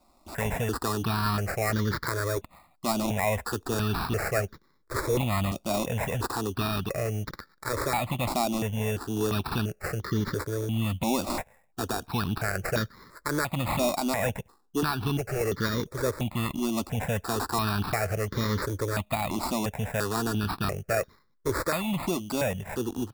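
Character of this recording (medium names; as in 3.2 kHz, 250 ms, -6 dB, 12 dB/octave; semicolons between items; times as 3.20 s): aliases and images of a low sample rate 3.1 kHz, jitter 0%; notches that jump at a steady rate 2.9 Hz 460–2600 Hz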